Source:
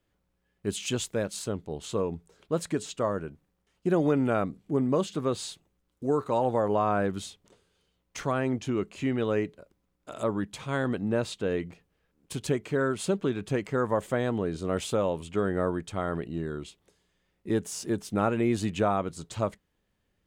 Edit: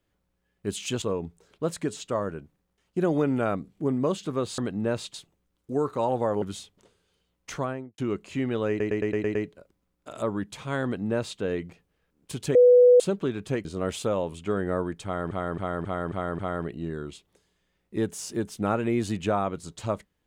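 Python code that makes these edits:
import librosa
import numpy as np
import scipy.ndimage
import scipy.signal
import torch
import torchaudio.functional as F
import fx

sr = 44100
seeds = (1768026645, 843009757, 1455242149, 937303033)

y = fx.studio_fade_out(x, sr, start_s=8.21, length_s=0.44)
y = fx.edit(y, sr, fx.cut(start_s=1.02, length_s=0.89),
    fx.cut(start_s=6.75, length_s=0.34),
    fx.stutter(start_s=9.36, slice_s=0.11, count=7),
    fx.duplicate(start_s=10.85, length_s=0.56, to_s=5.47),
    fx.bleep(start_s=12.56, length_s=0.45, hz=493.0, db=-11.5),
    fx.cut(start_s=13.66, length_s=0.87),
    fx.repeat(start_s=15.92, length_s=0.27, count=6), tone=tone)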